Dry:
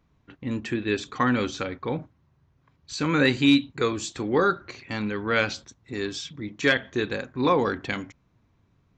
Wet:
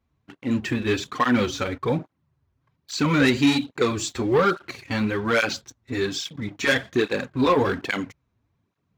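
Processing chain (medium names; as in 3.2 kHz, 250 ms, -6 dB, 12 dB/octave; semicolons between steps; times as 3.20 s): waveshaping leveller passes 2; cancelling through-zero flanger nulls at 1.2 Hz, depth 7 ms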